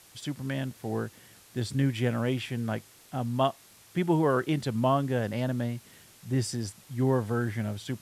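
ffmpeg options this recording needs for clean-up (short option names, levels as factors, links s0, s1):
-af "adeclick=t=4,afftdn=nr=18:nf=-56"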